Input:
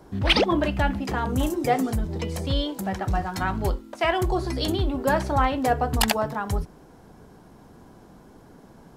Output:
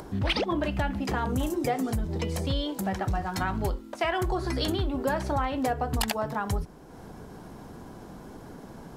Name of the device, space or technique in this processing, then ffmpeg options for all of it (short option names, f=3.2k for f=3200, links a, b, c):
upward and downward compression: -filter_complex "[0:a]asettb=1/sr,asplit=3[a][b][c];[a]atrim=end=4.124[d];[b]atrim=start=4.12:end=4.87,asetpts=PTS-STARTPTS,afade=t=in:d=0.004:c=qsin,afade=t=out:st=0.746:d=0.004:c=qsin,equalizer=f=1.5k:w=1.5:g=6[e];[c]atrim=start=4.866[f];[d][e]acrossfade=d=0.004:c1=hsin:c2=qsin[g];[g][f]acrossfade=d=0.004:c1=qsin:c2=hsin,acompressor=mode=upward:threshold=-36dB:ratio=2.5,acompressor=threshold=-24dB:ratio=5"